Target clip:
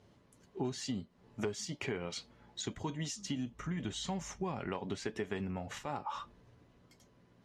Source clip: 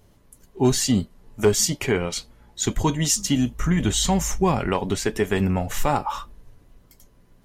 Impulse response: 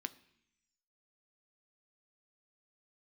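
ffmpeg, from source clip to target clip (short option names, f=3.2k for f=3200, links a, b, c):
-af "acompressor=threshold=-30dB:ratio=6,highpass=100,lowpass=5.2k,volume=-4.5dB"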